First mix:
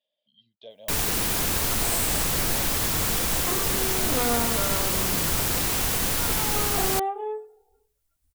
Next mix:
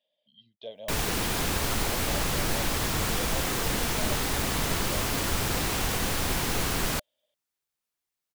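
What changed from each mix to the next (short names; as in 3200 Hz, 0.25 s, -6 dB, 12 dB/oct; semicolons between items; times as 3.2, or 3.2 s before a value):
speech +4.5 dB; second sound: muted; master: add high shelf 6900 Hz -9.5 dB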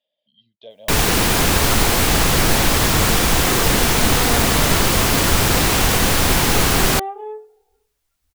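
first sound +12.0 dB; second sound: unmuted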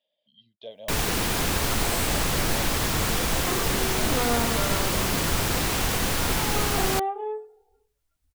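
first sound -9.0 dB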